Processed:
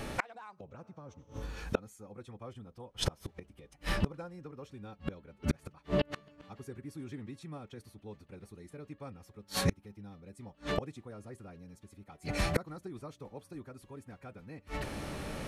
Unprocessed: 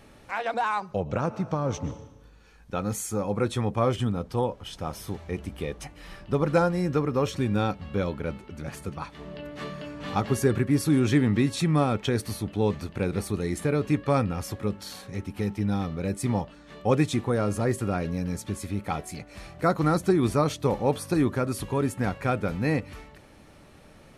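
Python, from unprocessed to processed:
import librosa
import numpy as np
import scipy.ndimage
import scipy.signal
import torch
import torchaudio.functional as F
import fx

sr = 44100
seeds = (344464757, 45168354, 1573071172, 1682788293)

y = fx.stretch_vocoder(x, sr, factor=0.64)
y = fx.gate_flip(y, sr, shuts_db=-29.0, range_db=-35)
y = y * 10.0 ** (13.5 / 20.0)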